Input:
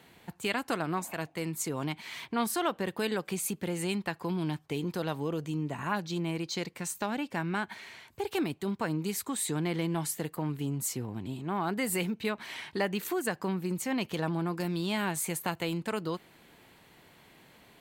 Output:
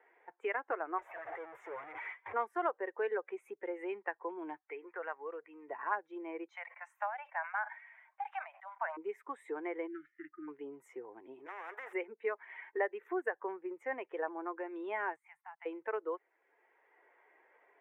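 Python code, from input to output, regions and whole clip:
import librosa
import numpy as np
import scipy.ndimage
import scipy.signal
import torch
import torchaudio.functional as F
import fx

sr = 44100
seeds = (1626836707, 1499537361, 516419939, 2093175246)

y = fx.chain(x, sr, fx.clip_1bit(),
    fx.low_shelf_res(hz=140.0, db=13.0, q=3.0),
    fx.gate_hold(open_db=-29.0, close_db=-34.0, hold_ms=71.0, range_db=-21, attack_ms=1.4, release_ms=100.0), at=(0.98, 2.34))
y = fx.chain(y, sr, fx.lowpass(hz=2400.0, slope=24),
    fx.tilt_shelf(db=-9.5, hz=1100.0), at=(4.61, 5.68))
y = fx.chain(y, sr, fx.steep_highpass(hz=600.0, slope=72),
    fx.sustainer(db_per_s=80.0), at=(6.48, 8.97))
y = fx.chain(y, sr, fx.brickwall_bandstop(low_hz=380.0, high_hz=1200.0),
    fx.air_absorb(metres=240.0), at=(9.87, 10.48))
y = fx.chain(y, sr, fx.cheby1_highpass(hz=260.0, order=6),
    fx.leveller(passes=3),
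    fx.spectral_comp(ratio=4.0), at=(11.46, 11.93))
y = fx.chain(y, sr, fx.ellip_bandstop(low_hz=150.0, high_hz=770.0, order=3, stop_db=40),
    fx.level_steps(step_db=22), at=(15.16, 15.66))
y = fx.bin_expand(y, sr, power=1.5)
y = scipy.signal.sosfilt(scipy.signal.ellip(3, 1.0, 40, [400.0, 2000.0], 'bandpass', fs=sr, output='sos'), y)
y = fx.band_squash(y, sr, depth_pct=40)
y = F.gain(torch.from_numpy(y), 2.0).numpy()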